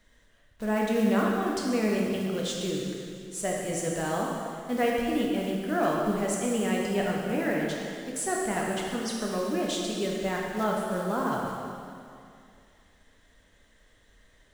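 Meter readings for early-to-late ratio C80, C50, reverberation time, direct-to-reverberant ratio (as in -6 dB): 1.0 dB, 0.0 dB, 2.4 s, -2.5 dB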